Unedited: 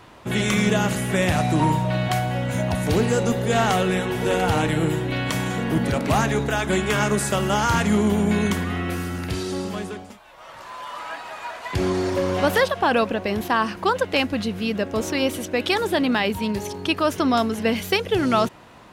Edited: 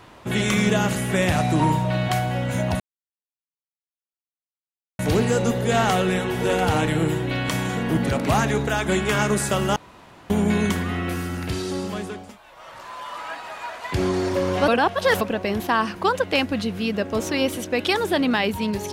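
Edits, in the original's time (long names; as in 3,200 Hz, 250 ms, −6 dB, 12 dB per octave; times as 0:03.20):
0:02.80: splice in silence 2.19 s
0:07.57–0:08.11: fill with room tone
0:12.49–0:13.02: reverse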